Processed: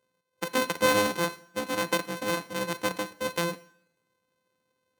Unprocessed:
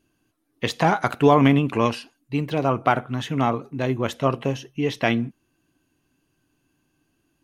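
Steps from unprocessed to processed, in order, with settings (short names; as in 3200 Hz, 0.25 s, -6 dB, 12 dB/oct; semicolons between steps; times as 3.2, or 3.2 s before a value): sample sorter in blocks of 128 samples; HPF 86 Hz 12 dB/oct; notch 3400 Hz, Q 21; two-slope reverb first 0.96 s, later 2.4 s, from -27 dB, DRR 14.5 dB; wide varispeed 1.49×; gain -7 dB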